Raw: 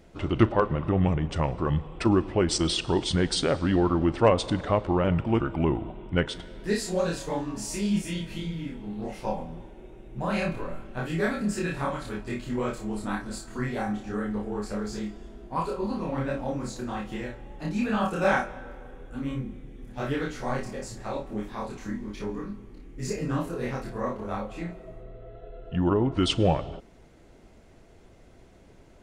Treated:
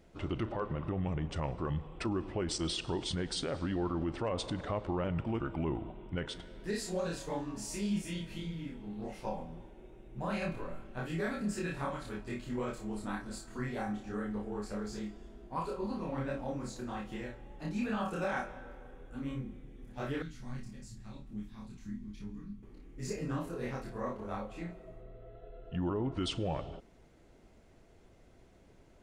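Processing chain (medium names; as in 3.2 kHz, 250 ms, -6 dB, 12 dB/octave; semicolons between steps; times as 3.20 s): 20.22–22.63 s: FFT filter 210 Hz 0 dB, 500 Hz -21 dB, 3.4 kHz -6 dB; peak limiter -18.5 dBFS, peak gain reduction 10.5 dB; trim -7 dB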